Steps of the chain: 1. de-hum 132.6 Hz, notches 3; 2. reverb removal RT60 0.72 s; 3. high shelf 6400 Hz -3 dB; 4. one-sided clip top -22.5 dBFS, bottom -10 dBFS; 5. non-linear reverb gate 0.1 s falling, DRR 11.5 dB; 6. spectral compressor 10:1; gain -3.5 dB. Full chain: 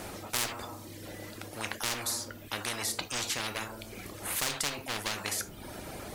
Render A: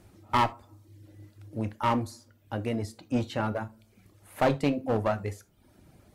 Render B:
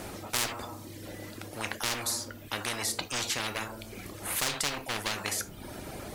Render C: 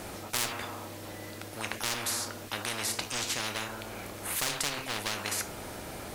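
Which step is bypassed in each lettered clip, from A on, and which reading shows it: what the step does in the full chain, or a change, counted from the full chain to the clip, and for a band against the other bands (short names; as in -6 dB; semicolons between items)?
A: 6, 8 kHz band -28.0 dB; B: 1, loudness change +1.5 LU; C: 2, momentary loudness spread change -2 LU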